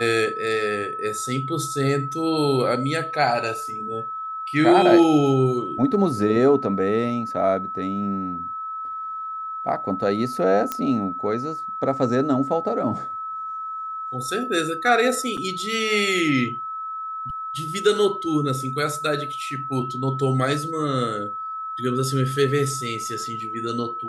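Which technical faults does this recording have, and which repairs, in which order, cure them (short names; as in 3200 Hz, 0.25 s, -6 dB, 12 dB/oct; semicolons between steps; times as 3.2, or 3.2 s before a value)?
tone 1300 Hz -28 dBFS
10.72 pop -10 dBFS
15.37–15.38 gap 5.7 ms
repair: de-click; notch 1300 Hz, Q 30; interpolate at 15.37, 5.7 ms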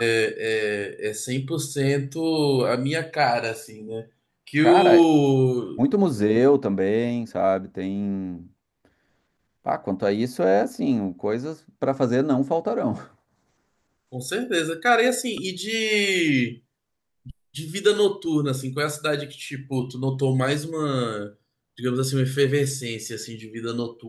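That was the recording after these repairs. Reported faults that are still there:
none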